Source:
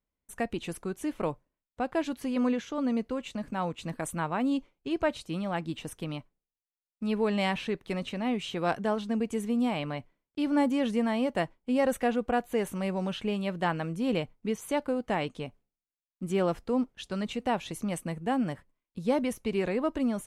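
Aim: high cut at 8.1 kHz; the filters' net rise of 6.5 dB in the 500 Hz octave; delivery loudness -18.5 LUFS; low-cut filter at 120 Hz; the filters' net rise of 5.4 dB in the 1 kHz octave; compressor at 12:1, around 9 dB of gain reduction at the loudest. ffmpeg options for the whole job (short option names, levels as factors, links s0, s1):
-af "highpass=120,lowpass=8100,equalizer=f=500:t=o:g=6.5,equalizer=f=1000:t=o:g=4.5,acompressor=threshold=0.0562:ratio=12,volume=4.73"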